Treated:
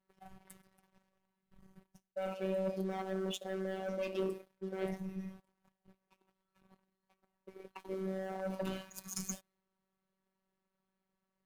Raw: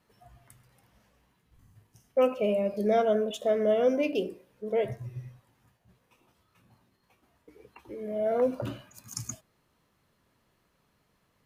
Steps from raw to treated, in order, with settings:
reversed playback
downward compressor 16 to 1, threshold −34 dBFS, peak gain reduction 16 dB
reversed playback
leveller curve on the samples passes 3
phases set to zero 190 Hz
one half of a high-frequency compander decoder only
level −5.5 dB

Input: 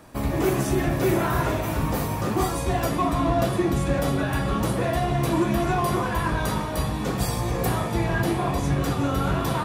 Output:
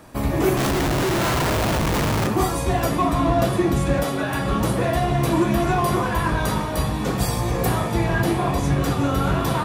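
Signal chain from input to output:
0:00.57–0:02.27: comparator with hysteresis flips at −32.5 dBFS
0:04.03–0:04.46: high-pass filter 450 Hz → 120 Hz 6 dB per octave
level +3 dB

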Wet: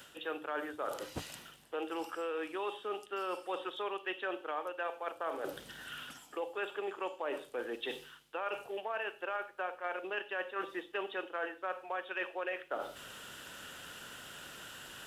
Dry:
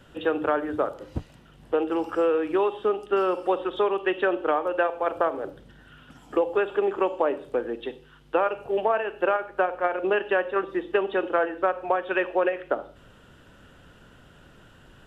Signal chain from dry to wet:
spectral tilt +4 dB per octave
reversed playback
downward compressor 5 to 1, threshold −41 dBFS, peak gain reduction 20 dB
reversed playback
level +4 dB

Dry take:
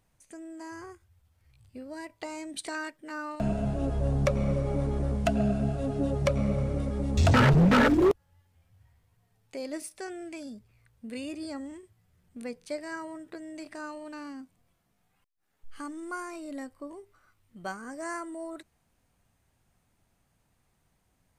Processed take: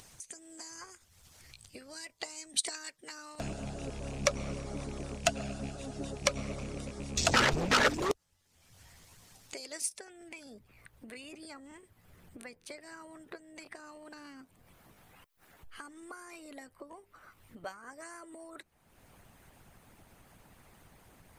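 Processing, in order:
loose part that buzzes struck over −26 dBFS, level −39 dBFS
parametric band 6,300 Hz +12 dB 1.8 octaves, from 0:09.99 −5 dB
harmonic and percussive parts rebalanced harmonic −16 dB
low-shelf EQ 240 Hz −4.5 dB
upward compression, threshold −41 dBFS

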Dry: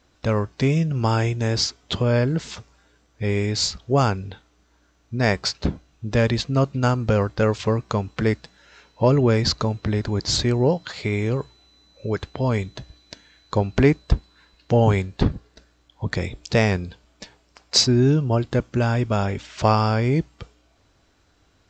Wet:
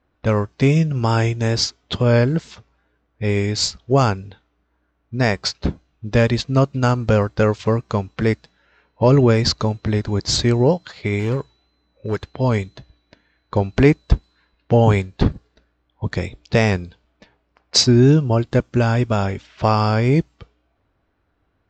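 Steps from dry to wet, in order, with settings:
tape wow and flutter 26 cents
in parallel at +2.5 dB: brickwall limiter −12 dBFS, peak gain reduction 8.5 dB
on the sum: low-pass that shuts in the quiet parts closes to 2,000 Hz, open at −12.5 dBFS
0:11.19–0:12.25: hard clipping −11 dBFS, distortion −35 dB
expander for the loud parts 1.5 to 1, over −31 dBFS
level −1 dB

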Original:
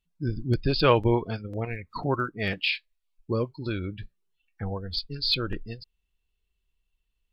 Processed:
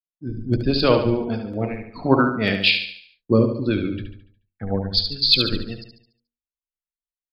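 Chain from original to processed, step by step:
hum removal 47.36 Hz, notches 22
noise gate with hold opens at −42 dBFS
graphic EQ with 15 bands 250 Hz +8 dB, 630 Hz +5 dB, 4,000 Hz +4 dB
automatic gain control gain up to 8 dB
rotating-speaker cabinet horn 1.2 Hz, later 8 Hz, at 0:02.01
repeating echo 72 ms, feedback 52%, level −7 dB
multiband upward and downward expander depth 40%
level −1 dB

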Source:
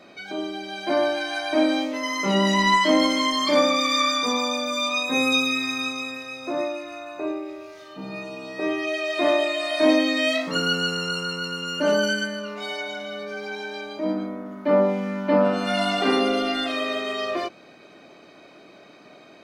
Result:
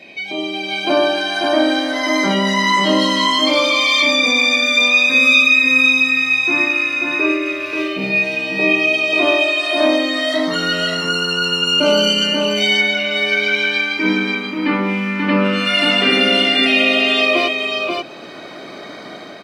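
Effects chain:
high-pass filter 56 Hz
parametric band 2,500 Hz +14 dB 0.85 octaves
notch filter 6,600 Hz, Q 15
in parallel at +0.5 dB: brickwall limiter −13.5 dBFS, peak gain reduction 11.5 dB
on the sum: automatic gain control gain up to 10 dB
auto-filter notch sine 0.12 Hz 610–2,600 Hz
on a send: single-tap delay 536 ms −3.5 dB
on the sum: level −2.5 dB

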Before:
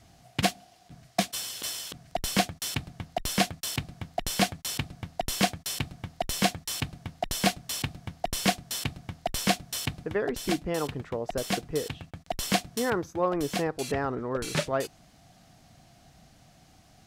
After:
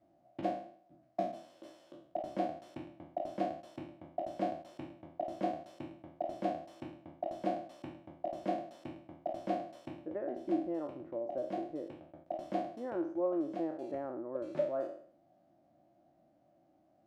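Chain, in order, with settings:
peak hold with a decay on every bin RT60 0.55 s
pair of resonant band-passes 440 Hz, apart 0.77 octaves
level −1.5 dB

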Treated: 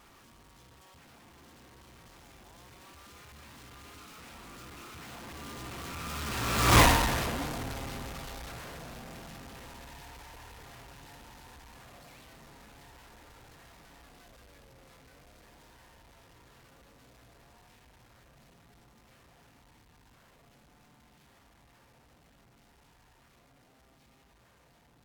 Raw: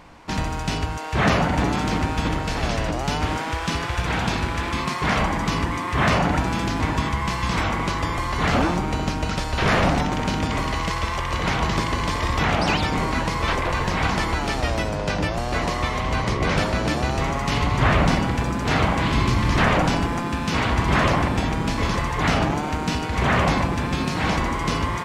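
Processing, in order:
sign of each sample alone
source passing by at 0:06.79, 57 m/s, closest 4.2 metres
on a send: convolution reverb RT60 0.85 s, pre-delay 3 ms, DRR 9 dB
on the sum: level +4.5 dB

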